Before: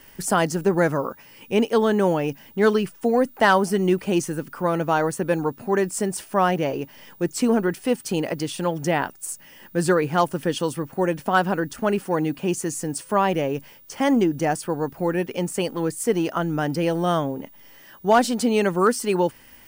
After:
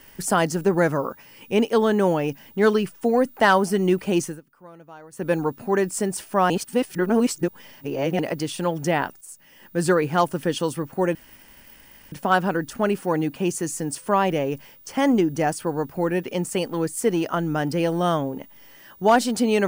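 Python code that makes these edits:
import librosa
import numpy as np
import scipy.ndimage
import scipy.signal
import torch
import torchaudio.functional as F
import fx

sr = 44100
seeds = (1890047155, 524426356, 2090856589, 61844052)

y = fx.edit(x, sr, fx.fade_down_up(start_s=4.24, length_s=1.04, db=-22.5, fade_s=0.17),
    fx.reverse_span(start_s=6.5, length_s=1.69),
    fx.fade_in_from(start_s=9.21, length_s=0.66, floor_db=-13.0),
    fx.insert_room_tone(at_s=11.15, length_s=0.97), tone=tone)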